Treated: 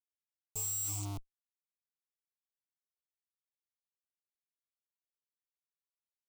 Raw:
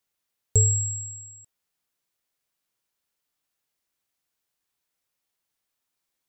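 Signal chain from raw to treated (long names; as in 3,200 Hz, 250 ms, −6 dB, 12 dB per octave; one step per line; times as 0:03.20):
dynamic equaliser 100 Hz, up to −6 dB, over −33 dBFS, Q 0.87
comparator with hysteresis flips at −34.5 dBFS
phaser with its sweep stopped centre 340 Hz, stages 8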